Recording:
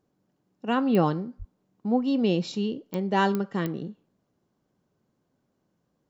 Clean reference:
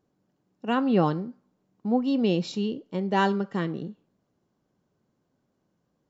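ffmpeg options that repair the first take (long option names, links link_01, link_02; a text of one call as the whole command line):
ffmpeg -i in.wav -filter_complex "[0:a]adeclick=threshold=4,asplit=3[link_01][link_02][link_03];[link_01]afade=type=out:start_time=1.38:duration=0.02[link_04];[link_02]highpass=frequency=140:width=0.5412,highpass=frequency=140:width=1.3066,afade=type=in:start_time=1.38:duration=0.02,afade=type=out:start_time=1.5:duration=0.02[link_05];[link_03]afade=type=in:start_time=1.5:duration=0.02[link_06];[link_04][link_05][link_06]amix=inputs=3:normalize=0" out.wav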